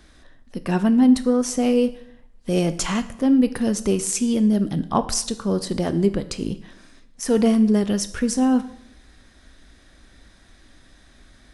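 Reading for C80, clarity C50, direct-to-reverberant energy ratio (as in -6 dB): 17.5 dB, 15.0 dB, 11.0 dB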